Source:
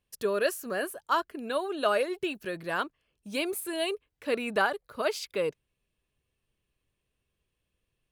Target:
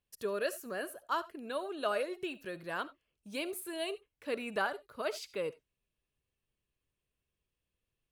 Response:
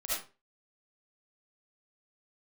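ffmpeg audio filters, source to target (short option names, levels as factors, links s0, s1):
-filter_complex "[0:a]asplit=2[s0][s1];[1:a]atrim=start_sample=2205,atrim=end_sample=4410[s2];[s1][s2]afir=irnorm=-1:irlink=0,volume=0.106[s3];[s0][s3]amix=inputs=2:normalize=0,volume=0.422"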